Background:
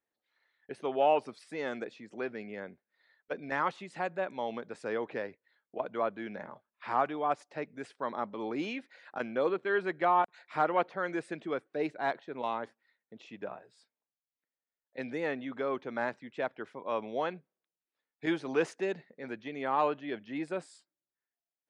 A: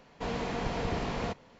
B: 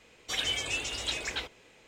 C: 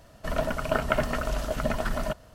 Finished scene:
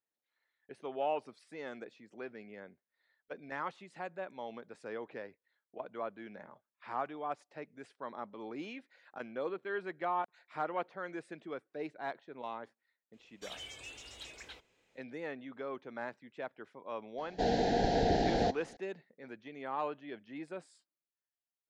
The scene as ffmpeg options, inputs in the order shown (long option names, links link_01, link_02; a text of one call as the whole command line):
ffmpeg -i bed.wav -i cue0.wav -i cue1.wav -filter_complex "[0:a]volume=-8dB[link_01];[2:a]asoftclip=type=tanh:threshold=-22dB[link_02];[1:a]firequalizer=gain_entry='entry(140,0);entry(310,7);entry(560,5);entry(790,11);entry(1100,-27);entry(1600,5);entry(2300,-7);entry(4000,7);entry(9800,-7)':delay=0.05:min_phase=1[link_03];[link_02]atrim=end=1.87,asetpts=PTS-STARTPTS,volume=-15dB,afade=type=in:duration=0.004:curve=hsin,afade=type=out:start_time=1.866:duration=0.004:curve=hsin,adelay=13130[link_04];[link_03]atrim=end=1.59,asetpts=PTS-STARTPTS,volume=-1dB,afade=type=in:duration=0.004:curve=hsin,afade=type=out:start_time=1.586:duration=0.004:curve=hsin,adelay=17180[link_05];[link_01][link_04][link_05]amix=inputs=3:normalize=0" out.wav